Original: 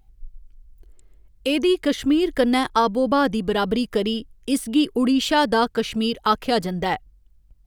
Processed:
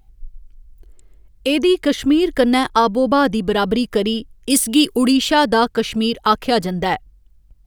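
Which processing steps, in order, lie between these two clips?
4.50–5.17 s: treble shelf 3.4 kHz +12 dB; trim +4 dB

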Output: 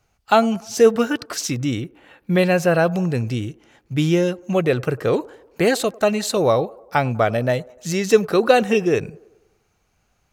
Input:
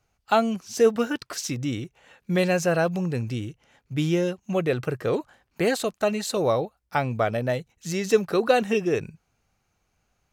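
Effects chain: 1.80–2.91 s: peaking EQ 6.5 kHz -14.5 dB -> -5 dB 0.83 oct; feedback echo behind a band-pass 98 ms, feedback 53%, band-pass 610 Hz, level -21.5 dB; trim +5.5 dB

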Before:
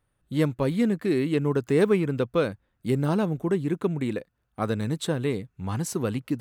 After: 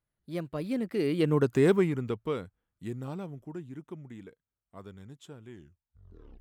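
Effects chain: tape stop on the ending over 1.19 s; Doppler pass-by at 1.44 s, 37 m/s, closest 12 m

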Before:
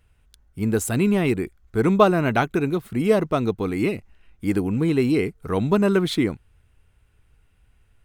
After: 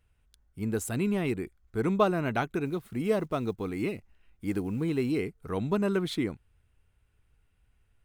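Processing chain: 2.65–5.25 s: block-companded coder 7-bit; trim -8.5 dB

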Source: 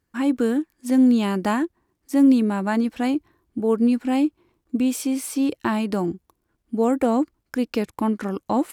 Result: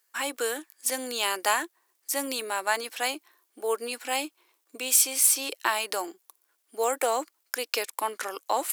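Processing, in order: high-pass 420 Hz 24 dB/octave; tilt EQ +4 dB/octave

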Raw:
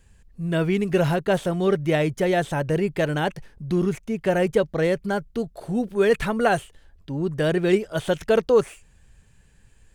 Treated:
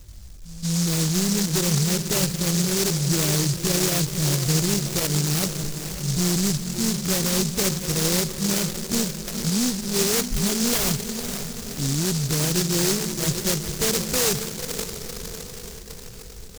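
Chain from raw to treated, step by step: self-modulated delay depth 0.2 ms; bass shelf 240 Hz +11.5 dB; de-hum 106.8 Hz, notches 2; in parallel at -2 dB: compression 5:1, threshold -27 dBFS, peak gain reduction 15.5 dB; on the sum: bit crusher 8-bit; Chebyshev shaper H 3 -35 dB, 8 -44 dB, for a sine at -2.5 dBFS; saturation -17 dBFS, distortion -10 dB; pre-echo 102 ms -18 dB; tempo 0.6×; on a send: echo that smears into a reverb 516 ms, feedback 59%, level -8.5 dB; on the sum: delay time shaken by noise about 5.8 kHz, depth 0.38 ms; trim -2 dB

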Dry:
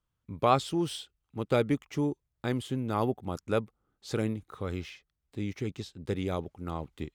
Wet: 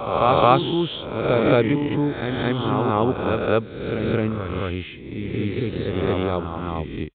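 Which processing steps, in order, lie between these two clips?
reverse spectral sustain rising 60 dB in 0.99 s; resampled via 8 kHz; reverse echo 219 ms -3.5 dB; trim +6.5 dB

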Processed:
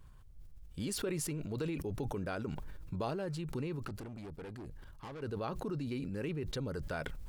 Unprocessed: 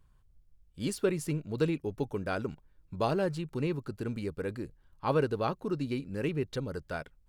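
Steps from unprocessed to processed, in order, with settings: 1.07–1.78 s: peaking EQ 160 Hz -3 dB 1.6 oct; compression 6:1, threshold -43 dBFS, peak gain reduction 19 dB; 3.83–5.22 s: valve stage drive 49 dB, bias 0.6; decay stretcher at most 21 dB/s; trim +6 dB

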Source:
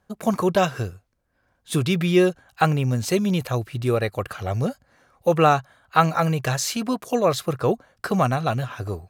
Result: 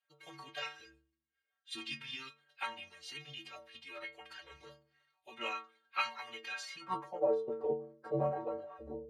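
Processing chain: inharmonic resonator 93 Hz, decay 0.8 s, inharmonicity 0.03; band-pass sweep 2.9 kHz -> 520 Hz, 6.45–7.40 s; formant-preserving pitch shift -5.5 st; trim +8 dB

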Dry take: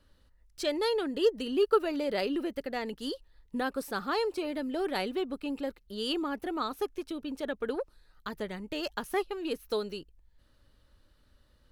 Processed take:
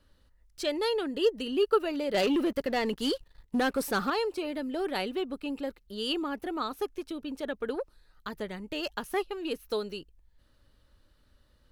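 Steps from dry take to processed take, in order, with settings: dynamic bell 2.8 kHz, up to +4 dB, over -52 dBFS, Q 6.3; 2.14–4.10 s: waveshaping leveller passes 2

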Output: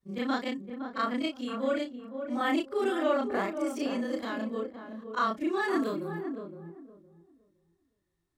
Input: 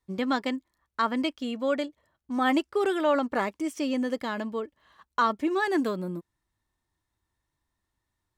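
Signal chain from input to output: short-time spectra conjugated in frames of 82 ms; band-stop 920 Hz, Q 8.9; filtered feedback delay 514 ms, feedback 23%, low-pass 910 Hz, level -6.5 dB

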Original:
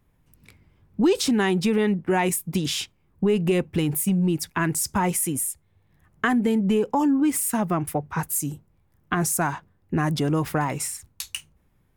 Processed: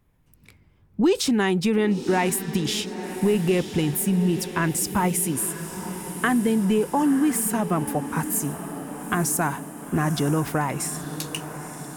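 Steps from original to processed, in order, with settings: echo that smears into a reverb 958 ms, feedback 63%, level -11.5 dB

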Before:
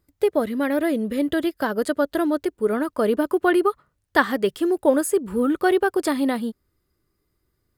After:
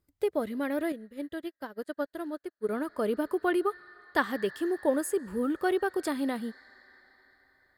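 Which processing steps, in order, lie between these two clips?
on a send at -6 dB: two resonant band-passes 2.8 kHz, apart 1.2 oct + reverberation RT60 5.4 s, pre-delay 100 ms; 0.92–2.69 s: on the sum: upward expansion 2.5:1, over -41 dBFS; trim -8.5 dB

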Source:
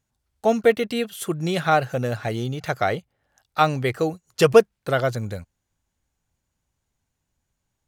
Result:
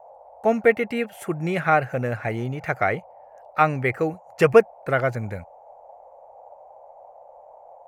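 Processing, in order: resonant high shelf 2.8 kHz -7.5 dB, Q 3; band noise 520–880 Hz -46 dBFS; trim -1 dB

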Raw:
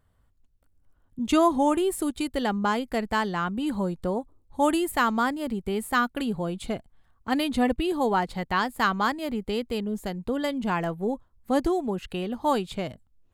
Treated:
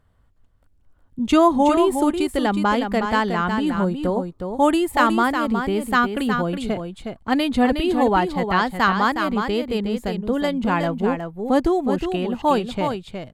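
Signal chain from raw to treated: treble shelf 6.9 kHz -9 dB; delay 364 ms -6.5 dB; trim +5.5 dB

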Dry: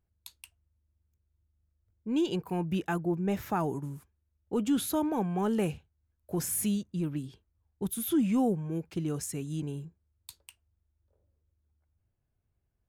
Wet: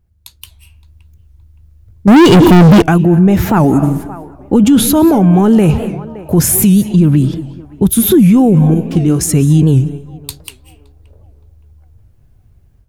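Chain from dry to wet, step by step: 8.74–9.21 s: feedback comb 60 Hz, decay 0.24 s, harmonics all, mix 80%; band-stop 7.8 kHz, Q 29; 3.64–4.64 s: comb 3.6 ms, depth 48%; band-passed feedback delay 568 ms, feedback 45%, band-pass 830 Hz, level -21 dB; reverberation RT60 0.60 s, pre-delay 153 ms, DRR 14.5 dB; level rider gain up to 11.5 dB; bass shelf 240 Hz +11 dB; 2.08–2.83 s: waveshaping leveller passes 5; loudness maximiser +11 dB; warped record 78 rpm, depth 160 cents; trim -1 dB

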